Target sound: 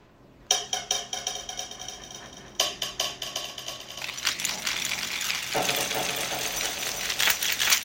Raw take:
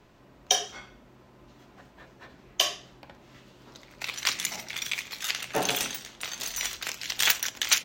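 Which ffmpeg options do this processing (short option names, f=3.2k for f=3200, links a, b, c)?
-filter_complex "[0:a]asplit=2[a][b];[b]aecho=0:1:222|444|666|888|1110|1332|1554|1776:0.447|0.264|0.155|0.0917|0.0541|0.0319|0.0188|0.0111[c];[a][c]amix=inputs=2:normalize=0,aphaser=in_gain=1:out_gain=1:delay=1.8:decay=0.3:speed=0.42:type=sinusoidal,asplit=2[d][e];[e]aecho=0:1:400|760|1084|1376|1638:0.631|0.398|0.251|0.158|0.1[f];[d][f]amix=inputs=2:normalize=0"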